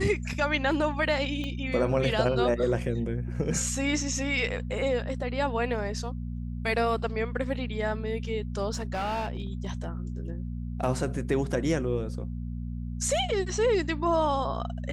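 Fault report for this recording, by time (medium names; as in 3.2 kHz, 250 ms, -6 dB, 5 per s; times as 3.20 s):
hum 60 Hz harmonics 4 -34 dBFS
1.44 s: pop -23 dBFS
8.73–9.72 s: clipped -26.5 dBFS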